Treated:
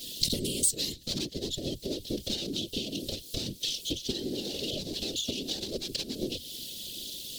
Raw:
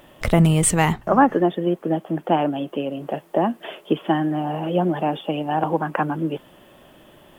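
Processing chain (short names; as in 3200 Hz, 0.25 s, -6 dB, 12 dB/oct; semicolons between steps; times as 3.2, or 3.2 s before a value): minimum comb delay 3.8 ms; resonant high shelf 2100 Hz +13 dB, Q 1.5; compressor 10:1, threshold -31 dBFS, peak gain reduction 26 dB; EQ curve 450 Hz 0 dB, 830 Hz -27 dB, 2500 Hz -13 dB, 4200 Hz +10 dB, 10000 Hz +4 dB; whisperiser; gain +2 dB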